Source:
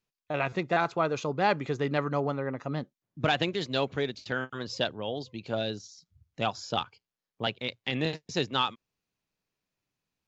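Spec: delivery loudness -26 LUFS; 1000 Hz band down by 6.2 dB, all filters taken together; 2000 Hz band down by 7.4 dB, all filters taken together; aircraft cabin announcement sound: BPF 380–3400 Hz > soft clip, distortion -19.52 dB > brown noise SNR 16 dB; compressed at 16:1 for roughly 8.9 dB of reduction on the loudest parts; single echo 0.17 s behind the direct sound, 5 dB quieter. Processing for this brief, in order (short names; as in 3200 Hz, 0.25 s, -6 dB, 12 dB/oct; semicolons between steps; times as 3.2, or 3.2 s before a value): bell 1000 Hz -7 dB; bell 2000 Hz -7 dB; compressor 16:1, threshold -33 dBFS; BPF 380–3400 Hz; echo 0.17 s -5 dB; soft clip -30.5 dBFS; brown noise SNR 16 dB; gain +17 dB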